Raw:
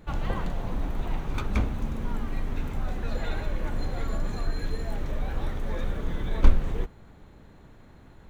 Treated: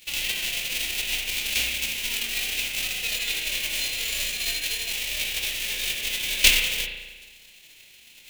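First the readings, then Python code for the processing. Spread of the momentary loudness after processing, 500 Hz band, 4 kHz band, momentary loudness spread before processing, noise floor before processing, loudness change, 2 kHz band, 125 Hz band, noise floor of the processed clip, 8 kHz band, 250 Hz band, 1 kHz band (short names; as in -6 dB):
6 LU, -7.0 dB, +23.5 dB, 7 LU, -51 dBFS, +8.0 dB, +15.5 dB, -16.5 dB, -52 dBFS, n/a, -12.5 dB, -8.0 dB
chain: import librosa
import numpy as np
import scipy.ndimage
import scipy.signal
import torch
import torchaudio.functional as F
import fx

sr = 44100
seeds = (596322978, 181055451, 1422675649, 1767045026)

y = fx.envelope_flatten(x, sr, power=0.3)
y = fx.high_shelf_res(y, sr, hz=1800.0, db=13.0, q=3.0)
y = fx.rev_spring(y, sr, rt60_s=1.2, pass_ms=(35,), chirp_ms=55, drr_db=2.5)
y = y * librosa.db_to_amplitude(-15.0)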